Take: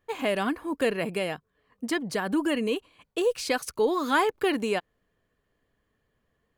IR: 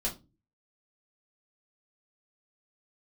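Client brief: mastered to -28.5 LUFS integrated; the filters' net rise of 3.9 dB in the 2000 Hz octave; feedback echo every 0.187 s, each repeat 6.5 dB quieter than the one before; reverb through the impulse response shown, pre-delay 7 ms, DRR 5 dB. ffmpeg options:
-filter_complex "[0:a]equalizer=f=2k:t=o:g=5,aecho=1:1:187|374|561|748|935|1122:0.473|0.222|0.105|0.0491|0.0231|0.0109,asplit=2[a][b];[1:a]atrim=start_sample=2205,adelay=7[c];[b][c]afir=irnorm=-1:irlink=0,volume=-9dB[d];[a][d]amix=inputs=2:normalize=0,volume=-4.5dB"

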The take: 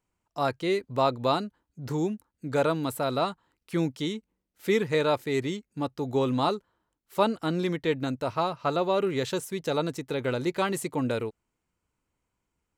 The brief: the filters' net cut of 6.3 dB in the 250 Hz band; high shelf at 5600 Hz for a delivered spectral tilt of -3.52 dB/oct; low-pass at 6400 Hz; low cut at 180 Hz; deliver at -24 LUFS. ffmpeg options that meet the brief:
-af "highpass=180,lowpass=6.4k,equalizer=f=250:t=o:g=-7.5,highshelf=f=5.6k:g=-6.5,volume=7dB"

